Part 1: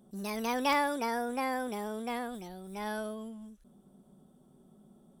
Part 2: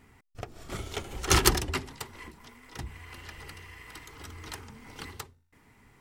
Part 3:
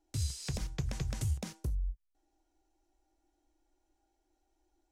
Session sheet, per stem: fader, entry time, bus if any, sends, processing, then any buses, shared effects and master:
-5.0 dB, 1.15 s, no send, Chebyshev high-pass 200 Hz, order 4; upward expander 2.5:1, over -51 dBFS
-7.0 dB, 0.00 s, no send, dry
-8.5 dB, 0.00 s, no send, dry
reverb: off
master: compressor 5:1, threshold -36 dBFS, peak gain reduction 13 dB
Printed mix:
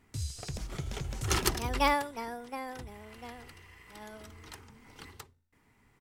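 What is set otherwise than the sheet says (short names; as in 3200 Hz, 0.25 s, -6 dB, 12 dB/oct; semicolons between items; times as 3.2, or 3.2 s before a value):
stem 1 -5.0 dB -> +3.0 dB; stem 3 -8.5 dB -> -2.0 dB; master: missing compressor 5:1, threshold -36 dBFS, peak gain reduction 13 dB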